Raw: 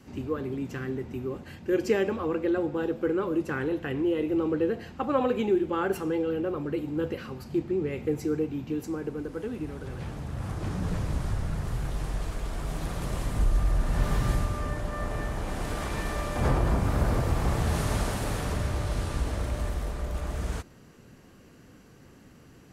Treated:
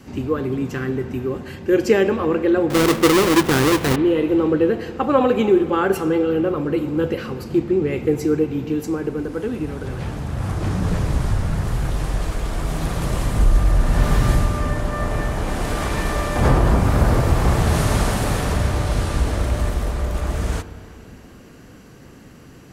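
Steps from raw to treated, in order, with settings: 2.7–3.96 half-waves squared off; spring tank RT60 3 s, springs 31/50 ms, chirp 40 ms, DRR 12.5 dB; gain +9 dB

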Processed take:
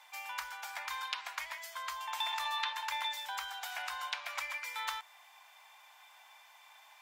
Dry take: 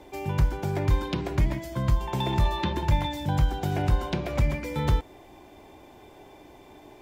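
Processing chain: inverse Chebyshev high-pass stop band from 390 Hz, stop band 50 dB

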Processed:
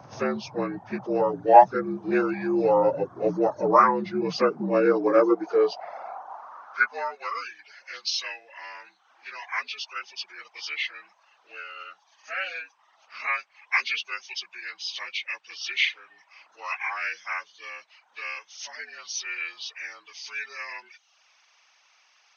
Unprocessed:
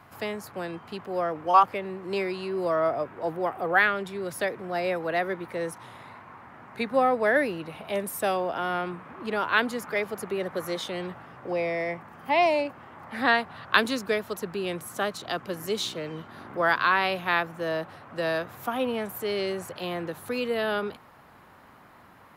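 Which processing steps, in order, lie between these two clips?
inharmonic rescaling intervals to 79%; reverb removal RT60 0.63 s; high-pass sweep 93 Hz -> 2700 Hz, 3.8–7.53; gain +6.5 dB

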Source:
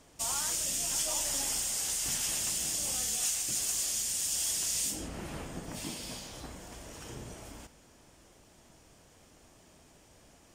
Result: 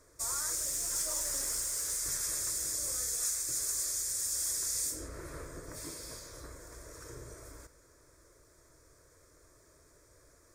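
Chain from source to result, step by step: fixed phaser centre 790 Hz, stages 6; 0.56–2 short-mantissa float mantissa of 2-bit

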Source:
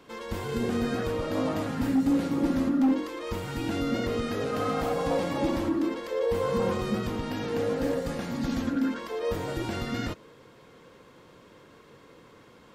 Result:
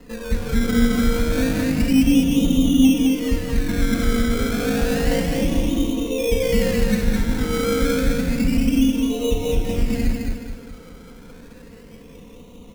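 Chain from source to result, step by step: steep low-pass 1300 Hz 48 dB/oct; tilt -4.5 dB/oct; comb 4.2 ms, depth 73%; de-hum 63.01 Hz, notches 29; in parallel at +3 dB: compressor, threshold -25 dBFS, peak gain reduction 17 dB; on the sum: decimation with a swept rate 19×, swing 60% 0.3 Hz; on a send: feedback echo 0.212 s, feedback 42%, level -3.5 dB; on the sum: gain -7.5 dB

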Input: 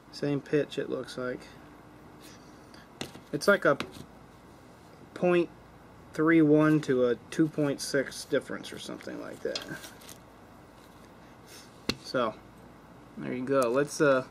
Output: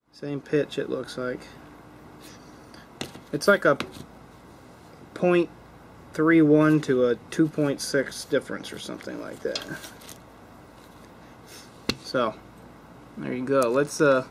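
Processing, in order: opening faded in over 0.61 s; gain +4 dB

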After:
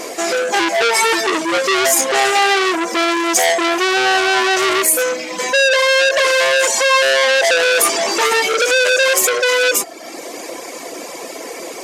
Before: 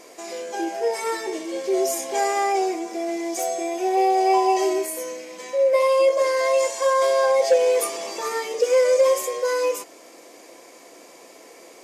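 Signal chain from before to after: reverb removal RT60 0.84 s; maximiser +19.5 dB; core saturation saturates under 2700 Hz

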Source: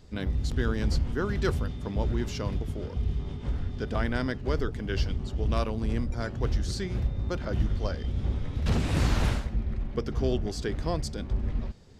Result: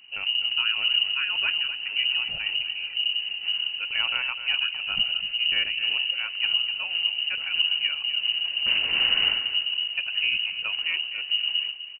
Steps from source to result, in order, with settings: inverted band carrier 2900 Hz; notch 1200 Hz, Q 14; on a send: feedback echo 0.252 s, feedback 25%, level -12 dB

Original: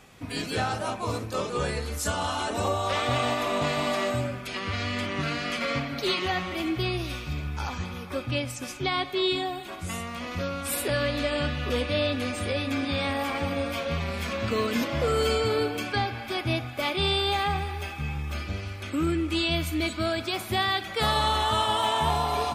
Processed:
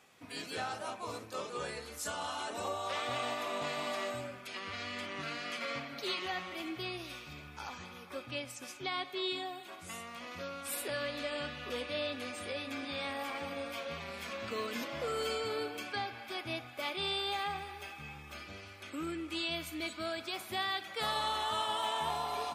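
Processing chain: HPF 410 Hz 6 dB/oct; gain -8.5 dB

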